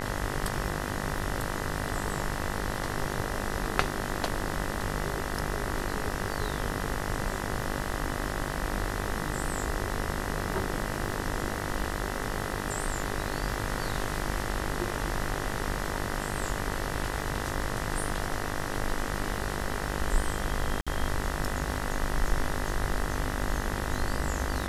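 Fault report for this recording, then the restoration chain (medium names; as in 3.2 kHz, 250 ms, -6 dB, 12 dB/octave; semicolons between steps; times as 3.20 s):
buzz 50 Hz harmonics 40 -35 dBFS
crackle 35 per s -39 dBFS
20.81–20.87 s: dropout 56 ms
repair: de-click; de-hum 50 Hz, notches 40; interpolate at 20.81 s, 56 ms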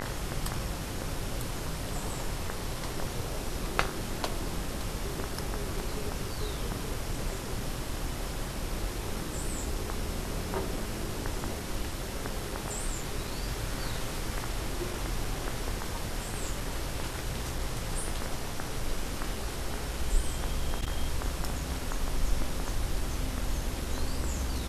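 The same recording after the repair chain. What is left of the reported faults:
nothing left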